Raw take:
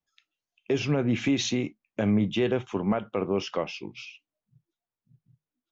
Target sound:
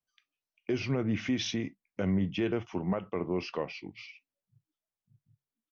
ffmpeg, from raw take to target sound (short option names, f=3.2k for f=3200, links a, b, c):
-af "asetrate=40440,aresample=44100,atempo=1.09051,volume=-5dB"